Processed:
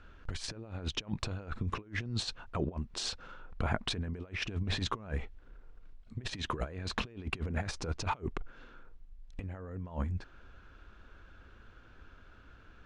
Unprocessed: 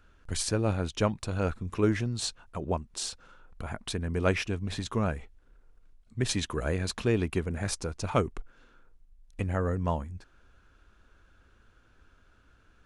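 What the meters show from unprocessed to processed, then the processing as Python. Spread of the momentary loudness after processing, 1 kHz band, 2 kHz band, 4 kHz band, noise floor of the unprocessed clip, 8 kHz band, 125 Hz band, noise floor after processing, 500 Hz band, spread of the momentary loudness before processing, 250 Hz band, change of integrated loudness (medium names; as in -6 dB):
22 LU, -4.0 dB, -3.0 dB, -1.5 dB, -63 dBFS, -9.5 dB, -6.0 dB, -57 dBFS, -12.0 dB, 12 LU, -9.0 dB, -6.5 dB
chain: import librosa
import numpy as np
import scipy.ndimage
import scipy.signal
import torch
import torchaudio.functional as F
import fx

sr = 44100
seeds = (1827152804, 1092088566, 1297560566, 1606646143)

y = fx.over_compress(x, sr, threshold_db=-35.0, ratio=-0.5)
y = scipy.signal.sosfilt(scipy.signal.butter(2, 4300.0, 'lowpass', fs=sr, output='sos'), y)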